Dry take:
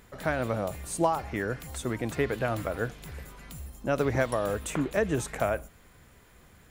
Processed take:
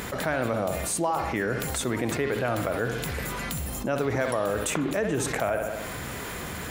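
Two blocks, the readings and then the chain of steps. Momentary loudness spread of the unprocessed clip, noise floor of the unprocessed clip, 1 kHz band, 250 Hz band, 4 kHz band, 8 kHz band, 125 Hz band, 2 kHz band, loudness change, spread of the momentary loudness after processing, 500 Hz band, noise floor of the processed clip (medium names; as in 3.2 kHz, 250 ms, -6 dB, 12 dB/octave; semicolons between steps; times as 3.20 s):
13 LU, -57 dBFS, +2.5 dB, +2.5 dB, +8.0 dB, +7.5 dB, +1.5 dB, +4.0 dB, +2.0 dB, 7 LU, +2.0 dB, -35 dBFS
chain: high-pass 130 Hz 6 dB/octave; bucket-brigade echo 65 ms, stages 2048, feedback 46%, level -11 dB; level flattener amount 70%; trim -3 dB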